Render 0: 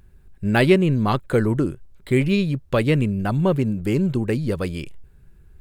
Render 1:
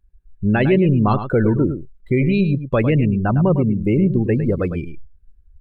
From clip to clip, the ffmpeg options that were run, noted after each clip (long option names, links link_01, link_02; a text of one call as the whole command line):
ffmpeg -i in.wav -af "alimiter=limit=-12.5dB:level=0:latency=1:release=19,afftdn=noise_reduction=26:noise_floor=-29,aecho=1:1:105:0.316,volume=4.5dB" out.wav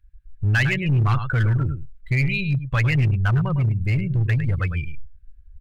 ffmpeg -i in.wav -filter_complex "[0:a]firequalizer=gain_entry='entry(120,0);entry(210,-21);entry(430,-21);entry(1600,3);entry(5500,-6)':delay=0.05:min_phase=1,asplit=2[link_01][link_02];[link_02]aeval=exprs='0.1*(abs(mod(val(0)/0.1+3,4)-2)-1)':channel_layout=same,volume=-4.5dB[link_03];[link_01][link_03]amix=inputs=2:normalize=0" out.wav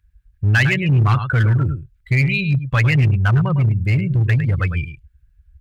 ffmpeg -i in.wav -af "highpass=59,volume=4.5dB" out.wav